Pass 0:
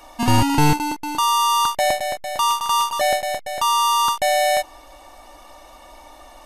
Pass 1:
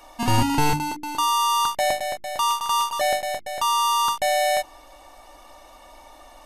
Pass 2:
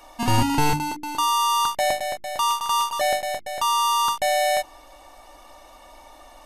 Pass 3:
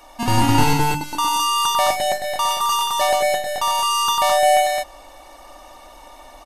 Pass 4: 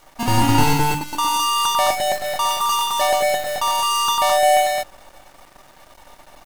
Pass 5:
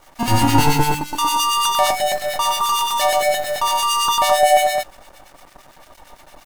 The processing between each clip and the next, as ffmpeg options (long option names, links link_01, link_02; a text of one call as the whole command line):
ffmpeg -i in.wav -af "bandreject=frequency=50:width_type=h:width=6,bandreject=frequency=100:width_type=h:width=6,bandreject=frequency=150:width_type=h:width=6,bandreject=frequency=200:width_type=h:width=6,bandreject=frequency=250:width_type=h:width=6,bandreject=frequency=300:width_type=h:width=6,bandreject=frequency=350:width_type=h:width=6,volume=-3dB" out.wav
ffmpeg -i in.wav -af anull out.wav
ffmpeg -i in.wav -af "aecho=1:1:96.21|212.8:0.562|0.794,volume=1.5dB" out.wav
ffmpeg -i in.wav -af "acrusher=bits=6:dc=4:mix=0:aa=0.000001" out.wav
ffmpeg -i in.wav -filter_complex "[0:a]acrossover=split=1500[link_01][link_02];[link_01]aeval=exprs='val(0)*(1-0.7/2+0.7/2*cos(2*PI*8.8*n/s))':channel_layout=same[link_03];[link_02]aeval=exprs='val(0)*(1-0.7/2-0.7/2*cos(2*PI*8.8*n/s))':channel_layout=same[link_04];[link_03][link_04]amix=inputs=2:normalize=0,volume=4.5dB" out.wav